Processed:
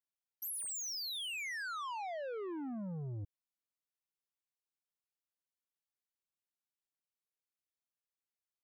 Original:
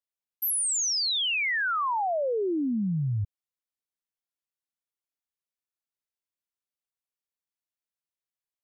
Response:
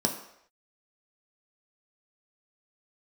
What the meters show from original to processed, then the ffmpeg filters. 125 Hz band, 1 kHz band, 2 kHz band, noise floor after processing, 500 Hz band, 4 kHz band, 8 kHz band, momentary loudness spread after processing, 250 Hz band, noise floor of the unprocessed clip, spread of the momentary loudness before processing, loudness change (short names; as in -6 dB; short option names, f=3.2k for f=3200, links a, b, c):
-14.0 dB, -14.0 dB, -14.0 dB, under -85 dBFS, -14.0 dB, -14.0 dB, -14.0 dB, 7 LU, -14.0 dB, under -85 dBFS, 7 LU, -14.0 dB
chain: -af "asoftclip=type=tanh:threshold=-32.5dB,volume=-7dB"